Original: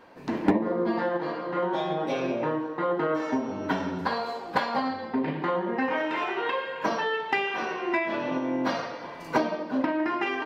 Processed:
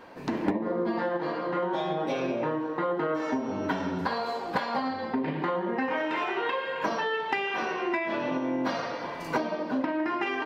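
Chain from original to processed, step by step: compressor 2.5:1, threshold -32 dBFS, peak gain reduction 10.5 dB; gain +4 dB

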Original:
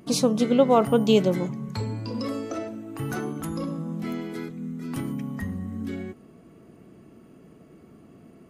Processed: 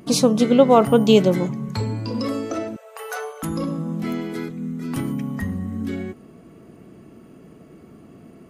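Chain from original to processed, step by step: 2.76–3.43 brick-wall FIR high-pass 410 Hz; gain +5 dB

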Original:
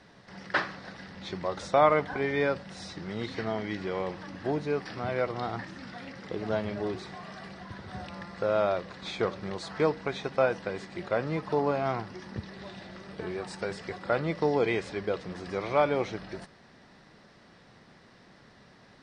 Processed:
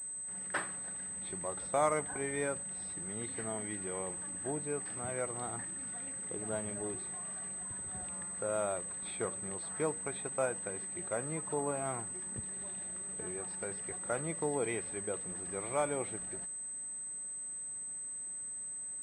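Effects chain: pulse-width modulation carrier 8200 Hz; gain -8.5 dB

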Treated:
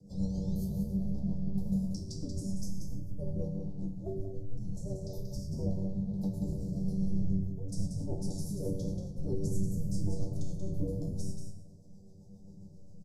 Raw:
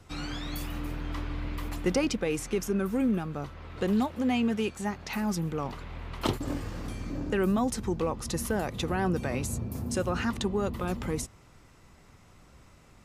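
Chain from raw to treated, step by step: octaver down 1 oct, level -1 dB; elliptic band-stop 810–5300 Hz, stop band 50 dB; high shelf 3700 Hz -9.5 dB; negative-ratio compressor -31 dBFS, ratio -0.5; frequency shift -230 Hz; resonator 96 Hz, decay 0.64 s, harmonics all, mix 90%; rotary speaker horn 7.5 Hz; echo 0.184 s -6.5 dB; shoebox room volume 38 m³, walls mixed, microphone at 0.35 m; gain +8.5 dB

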